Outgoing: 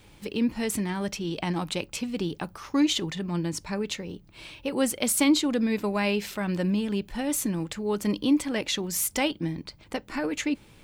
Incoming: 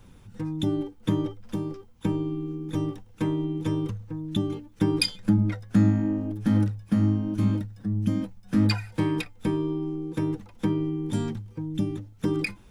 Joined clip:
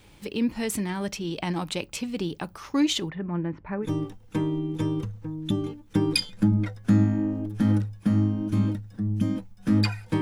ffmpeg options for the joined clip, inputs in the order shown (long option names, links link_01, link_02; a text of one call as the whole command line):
ffmpeg -i cue0.wav -i cue1.wav -filter_complex "[0:a]asplit=3[link_01][link_02][link_03];[link_01]afade=type=out:start_time=3.08:duration=0.02[link_04];[link_02]lowpass=frequency=2000:width=0.5412,lowpass=frequency=2000:width=1.3066,afade=type=in:start_time=3.08:duration=0.02,afade=type=out:start_time=3.9:duration=0.02[link_05];[link_03]afade=type=in:start_time=3.9:duration=0.02[link_06];[link_04][link_05][link_06]amix=inputs=3:normalize=0,apad=whole_dur=10.21,atrim=end=10.21,atrim=end=3.9,asetpts=PTS-STARTPTS[link_07];[1:a]atrim=start=2.66:end=9.07,asetpts=PTS-STARTPTS[link_08];[link_07][link_08]acrossfade=duration=0.1:curve1=tri:curve2=tri" out.wav